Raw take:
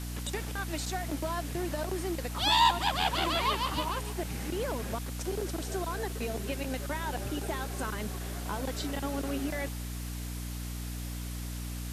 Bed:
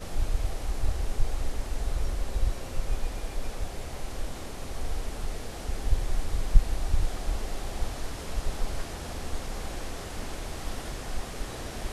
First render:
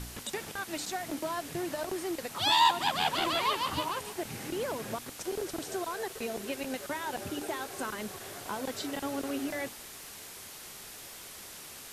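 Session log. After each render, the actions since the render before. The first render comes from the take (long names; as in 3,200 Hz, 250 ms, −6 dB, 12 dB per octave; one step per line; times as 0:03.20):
hum removal 60 Hz, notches 5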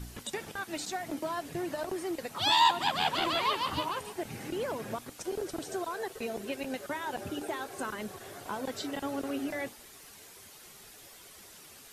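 broadband denoise 8 dB, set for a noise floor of −47 dBFS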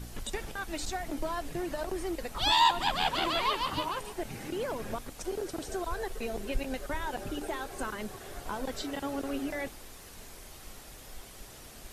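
mix in bed −15 dB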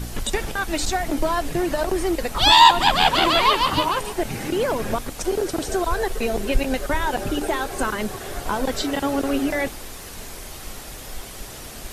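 level +12 dB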